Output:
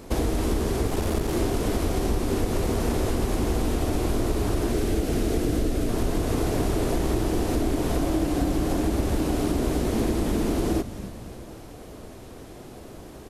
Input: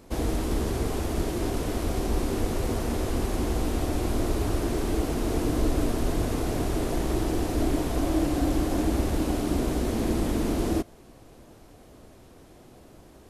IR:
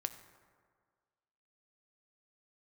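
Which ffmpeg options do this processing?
-filter_complex "[0:a]asettb=1/sr,asplit=3[s0][s1][s2];[s0]atrim=end=0.874[s3];[s1]atrim=start=0.87:end=1.37,asetpts=PTS-STARTPTS,afade=t=in:d=0.004:c=qsin,afade=t=out:st=0.496:d=0.004:c=qsin,aeval=exprs='clip(val(0),-1,0.0266)':c=same[s4];[s2]atrim=start=1.366[s5];[s3][s4]acrossfade=d=0.004:c1=hsin:c2=qsin[s6];[s6][s5]acrossfade=d=0.004:c1=qsin:c2=hsin,asettb=1/sr,asplit=3[s7][s8][s9];[s7]atrim=end=4.724[s10];[s8]atrim=start=4.72:end=5.89,asetpts=PTS-STARTPTS,afade=t=in:d=0.004:c=qsin,afade=t=out:st=1.166:d=0.004:c=qsin,equalizer=f=990:t=o:w=0.54:g=-8.5[s11];[s9]atrim=start=5.886[s12];[s10][s11]acrossfade=d=0.004:c1=hsin:c2=qsin[s13];[s13][s12]acrossfade=d=0.004:c1=qsin:c2=hsin,acompressor=threshold=0.0355:ratio=6,equalizer=f=420:t=o:w=0.26:g=2.5,asplit=6[s14][s15][s16][s17][s18][s19];[s15]adelay=273,afreqshift=-130,volume=0.224[s20];[s16]adelay=546,afreqshift=-260,volume=0.112[s21];[s17]adelay=819,afreqshift=-390,volume=0.0562[s22];[s18]adelay=1092,afreqshift=-520,volume=0.0279[s23];[s19]adelay=1365,afreqshift=-650,volume=0.014[s24];[s14][s20][s21][s22][s23][s24]amix=inputs=6:normalize=0,volume=2.51"

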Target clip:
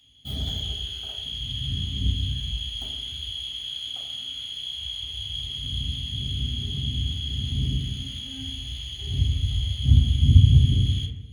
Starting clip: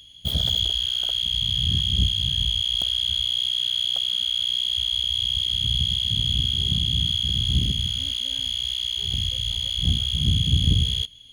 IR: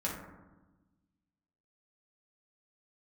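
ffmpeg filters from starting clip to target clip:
-filter_complex "[0:a]asettb=1/sr,asplit=3[s0][s1][s2];[s0]atrim=end=8.354[s3];[s1]atrim=start=8.35:end=10.54,asetpts=PTS-STARTPTS,afade=t=in:d=0.004:c=qsin,afade=t=out:st=2.186:d=0.004:c=qsin,equalizer=f=84:w=0.63:g=11.5[s4];[s2]atrim=start=10.536[s5];[s3][s4]acrossfade=d=0.004:c1=hsin:c2=qsin[s6];[s6][s5]acrossfade=d=0.004:c1=qsin:c2=hsin[s7];[1:a]atrim=start_sample=2205,asetrate=61740,aresample=44100[s8];[s7][s8]afir=irnorm=-1:irlink=0,volume=0.447"

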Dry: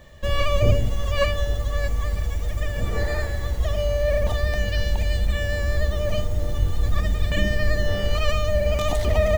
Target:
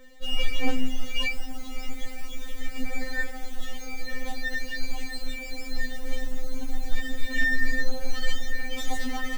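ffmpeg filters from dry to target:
-af "aeval=exprs='0.335*(abs(mod(val(0)/0.335+3,4)-2)-1)':c=same,afftfilt=real='re*3.46*eq(mod(b,12),0)':imag='im*3.46*eq(mod(b,12),0)':win_size=2048:overlap=0.75"

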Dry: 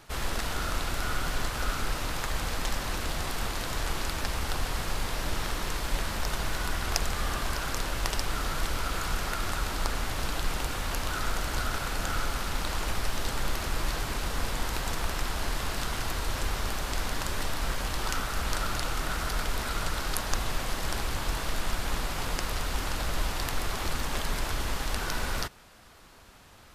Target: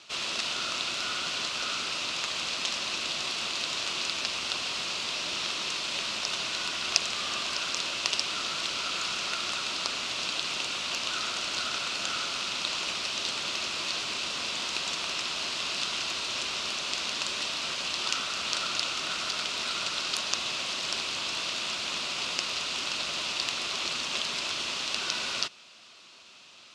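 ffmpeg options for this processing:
-af "aexciter=amount=3.5:drive=2.2:freq=3200,afftfilt=real='re*lt(hypot(re,im),0.631)':imag='im*lt(hypot(re,im),0.631)':win_size=1024:overlap=0.75,highpass=290,equalizer=f=290:t=q:w=4:g=-4,equalizer=f=470:t=q:w=4:g=-7,equalizer=f=820:t=q:w=4:g=-8,equalizer=f=1700:t=q:w=4:g=-6,equalizer=f=2600:t=q:w=4:g=9,lowpass=f=6000:w=0.5412,lowpass=f=6000:w=1.3066"

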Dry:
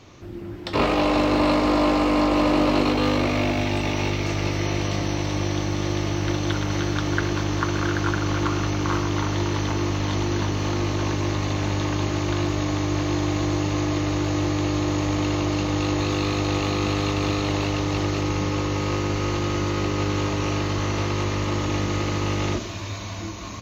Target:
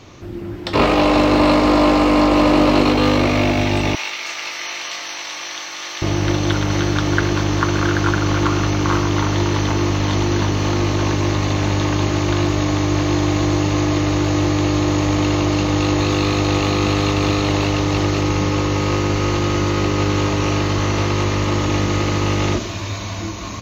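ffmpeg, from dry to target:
-filter_complex "[0:a]asettb=1/sr,asplit=3[s0][s1][s2];[s0]atrim=end=3.954[s3];[s1]atrim=start=3.95:end=6.02,asetpts=PTS-STARTPTS,afade=t=in:d=0.004:c=qsin,afade=t=out:st=2.066:d=0.004:c=qsin,highpass=1300[s4];[s2]atrim=start=6.016[s5];[s3][s4]acrossfade=d=0.004:c1=hsin:c2=qsin[s6];[s6][s5]acrossfade=d=0.004:c1=qsin:c2=hsin,volume=2"

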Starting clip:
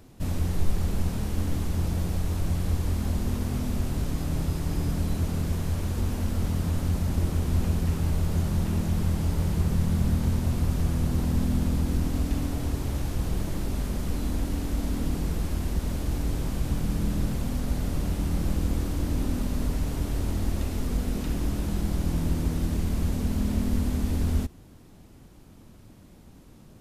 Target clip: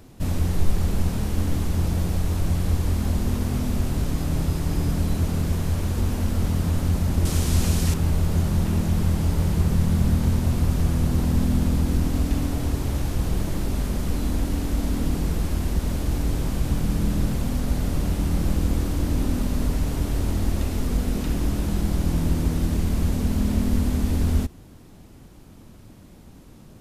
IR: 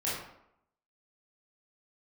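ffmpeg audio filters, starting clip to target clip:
-filter_complex "[0:a]asettb=1/sr,asplit=3[s0][s1][s2];[s0]atrim=end=7.254[s3];[s1]atrim=start=7.25:end=7.94,asetpts=PTS-STARTPTS,afade=t=in:d=0.004:c=qsin,afade=t=out:st=0.686:d=0.004:c=qsin,equalizer=f=7100:t=o:w=2.7:g=11[s4];[s2]atrim=start=7.936[s5];[s3][s4]acrossfade=d=0.004:c1=hsin:c2=qsin[s6];[s6][s5]acrossfade=d=0.004:c1=qsin:c2=hsin,volume=1.58"

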